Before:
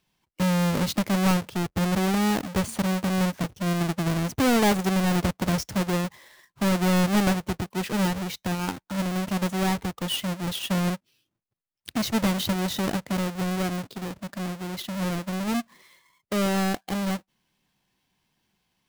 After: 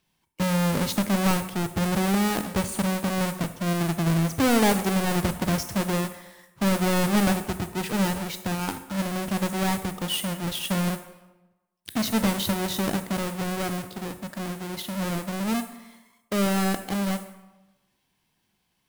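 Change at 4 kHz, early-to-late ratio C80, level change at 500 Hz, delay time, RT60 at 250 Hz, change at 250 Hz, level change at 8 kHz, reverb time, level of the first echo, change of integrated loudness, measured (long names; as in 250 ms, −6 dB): 0.0 dB, 14.0 dB, +0.5 dB, no echo audible, 0.95 s, −0.5 dB, +2.5 dB, 1.1 s, no echo audible, 0.0 dB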